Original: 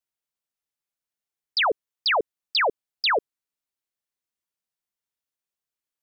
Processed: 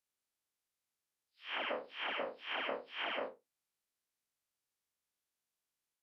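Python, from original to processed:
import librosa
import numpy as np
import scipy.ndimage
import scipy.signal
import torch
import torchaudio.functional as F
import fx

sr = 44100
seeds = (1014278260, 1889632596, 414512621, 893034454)

y = fx.spec_blur(x, sr, span_ms=174.0)
y = fx.pitch_keep_formants(y, sr, semitones=-9.0)
y = y * librosa.db_to_amplitude(1.5)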